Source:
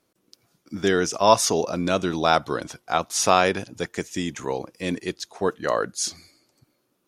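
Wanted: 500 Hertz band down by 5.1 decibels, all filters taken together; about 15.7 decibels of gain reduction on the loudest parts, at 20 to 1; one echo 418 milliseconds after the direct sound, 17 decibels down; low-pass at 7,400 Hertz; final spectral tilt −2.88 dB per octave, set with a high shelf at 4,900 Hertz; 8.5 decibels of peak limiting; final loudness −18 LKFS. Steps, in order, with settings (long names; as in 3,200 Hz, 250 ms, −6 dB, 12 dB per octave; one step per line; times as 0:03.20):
low-pass filter 7,400 Hz
parametric band 500 Hz −7 dB
high-shelf EQ 4,900 Hz +7.5 dB
downward compressor 20 to 1, threshold −28 dBFS
brickwall limiter −21.5 dBFS
single-tap delay 418 ms −17 dB
level +17 dB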